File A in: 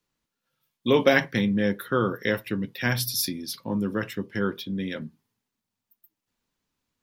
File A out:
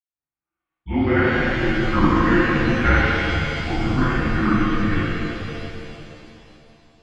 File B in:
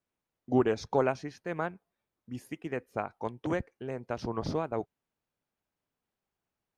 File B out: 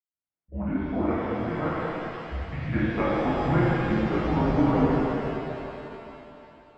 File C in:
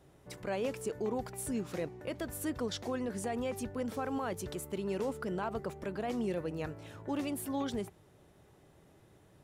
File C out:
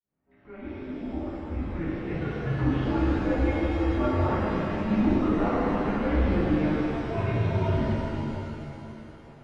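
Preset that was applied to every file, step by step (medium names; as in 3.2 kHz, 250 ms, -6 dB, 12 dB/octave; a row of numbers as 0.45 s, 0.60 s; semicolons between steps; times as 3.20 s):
fade-in on the opening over 2.71 s; mistuned SSB -180 Hz 200–2600 Hz; pitch-shifted reverb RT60 2.9 s, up +7 st, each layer -8 dB, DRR -11 dB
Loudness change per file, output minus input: +6.0 LU, +7.0 LU, +10.0 LU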